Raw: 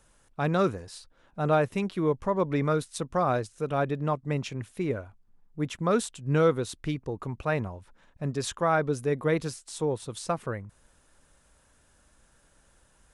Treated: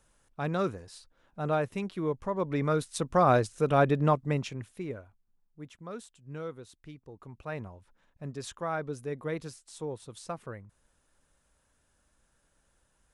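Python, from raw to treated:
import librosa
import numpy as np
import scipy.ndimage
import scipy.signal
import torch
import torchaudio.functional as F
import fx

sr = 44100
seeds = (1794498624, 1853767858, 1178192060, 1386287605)

y = fx.gain(x, sr, db=fx.line((2.34, -5.0), (3.34, 4.0), (4.07, 4.0), (4.83, -7.5), (5.81, -16.5), (6.97, -16.5), (7.63, -8.5)))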